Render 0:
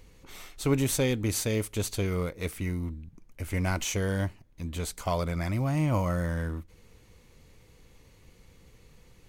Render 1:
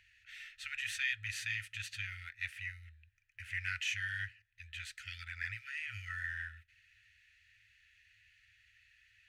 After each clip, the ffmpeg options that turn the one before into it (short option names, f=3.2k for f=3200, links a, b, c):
-filter_complex "[0:a]asplit=3[a][b][c];[a]bandpass=f=530:t=q:w=8,volume=0dB[d];[b]bandpass=f=1.84k:t=q:w=8,volume=-6dB[e];[c]bandpass=f=2.48k:t=q:w=8,volume=-9dB[f];[d][e][f]amix=inputs=3:normalize=0,afftfilt=real='re*(1-between(b*sr/4096,110,1300))':imag='im*(1-between(b*sr/4096,110,1300))':win_size=4096:overlap=0.75,volume=13dB"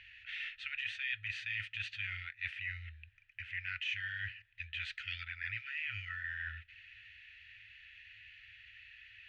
-af "areverse,acompressor=threshold=-49dB:ratio=4,areverse,lowpass=f=3k:t=q:w=2,volume=6.5dB"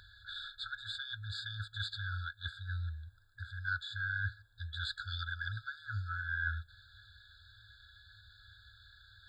-af "afftfilt=real='re*eq(mod(floor(b*sr/1024/1700),2),0)':imag='im*eq(mod(floor(b*sr/1024/1700),2),0)':win_size=1024:overlap=0.75,volume=10.5dB"